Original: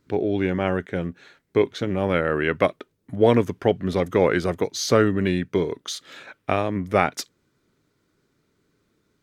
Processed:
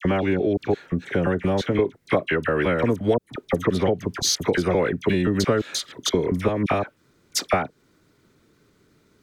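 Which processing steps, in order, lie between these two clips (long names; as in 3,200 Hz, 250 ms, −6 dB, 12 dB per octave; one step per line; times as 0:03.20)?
slices reordered back to front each 174 ms, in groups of 4
downward compressor 6 to 1, threshold −25 dBFS, peak gain reduction 13.5 dB
all-pass dispersion lows, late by 52 ms, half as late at 1,500 Hz
level +8 dB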